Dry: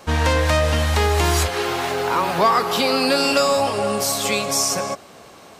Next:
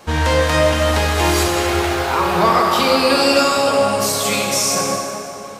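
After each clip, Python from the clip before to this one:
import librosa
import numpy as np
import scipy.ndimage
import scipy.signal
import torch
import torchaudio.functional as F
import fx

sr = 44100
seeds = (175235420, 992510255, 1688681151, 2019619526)

y = fx.rev_plate(x, sr, seeds[0], rt60_s=2.9, hf_ratio=0.65, predelay_ms=0, drr_db=-1.5)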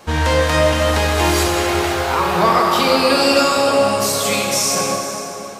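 y = x + 10.0 ** (-14.0 / 20.0) * np.pad(x, (int(492 * sr / 1000.0), 0))[:len(x)]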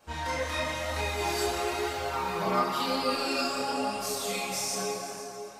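y = fx.stiff_resonator(x, sr, f0_hz=61.0, decay_s=0.39, stiffness=0.008)
y = fx.chorus_voices(y, sr, voices=2, hz=0.97, base_ms=28, depth_ms=3.5, mix_pct=50)
y = y * 10.0 ** (-2.5 / 20.0)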